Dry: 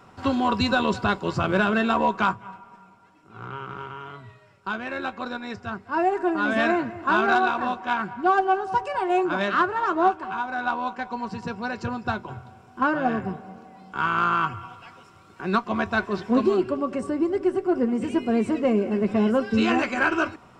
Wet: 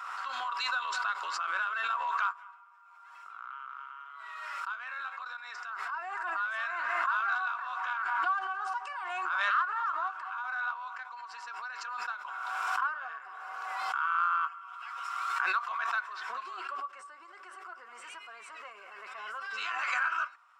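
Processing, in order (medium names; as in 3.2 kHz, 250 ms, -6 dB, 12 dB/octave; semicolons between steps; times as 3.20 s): ladder high-pass 1.1 kHz, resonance 60%; swell ahead of each attack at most 22 dB/s; trim -4.5 dB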